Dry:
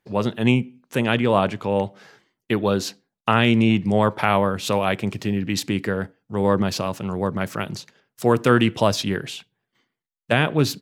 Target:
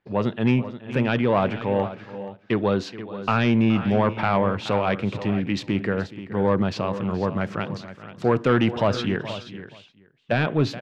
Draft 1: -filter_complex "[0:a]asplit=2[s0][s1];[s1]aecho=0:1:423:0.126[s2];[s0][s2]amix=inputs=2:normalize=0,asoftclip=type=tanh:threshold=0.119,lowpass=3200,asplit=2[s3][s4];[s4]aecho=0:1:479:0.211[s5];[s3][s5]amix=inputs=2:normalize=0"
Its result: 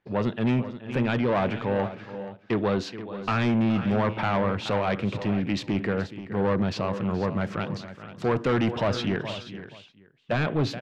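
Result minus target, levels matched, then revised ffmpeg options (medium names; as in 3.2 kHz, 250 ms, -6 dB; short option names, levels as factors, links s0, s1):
saturation: distortion +7 dB
-filter_complex "[0:a]asplit=2[s0][s1];[s1]aecho=0:1:423:0.126[s2];[s0][s2]amix=inputs=2:normalize=0,asoftclip=type=tanh:threshold=0.299,lowpass=3200,asplit=2[s3][s4];[s4]aecho=0:1:479:0.211[s5];[s3][s5]amix=inputs=2:normalize=0"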